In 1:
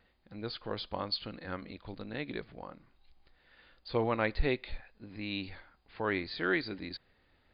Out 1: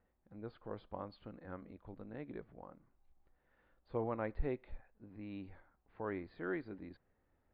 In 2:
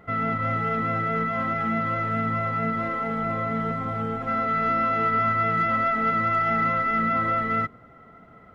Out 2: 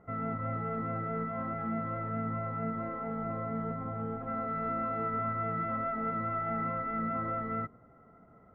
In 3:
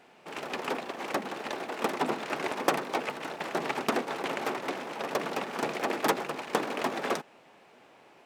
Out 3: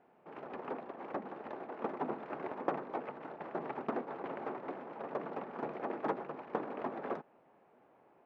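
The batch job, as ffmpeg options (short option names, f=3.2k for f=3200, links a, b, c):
-af "lowpass=1.2k,volume=-7dB"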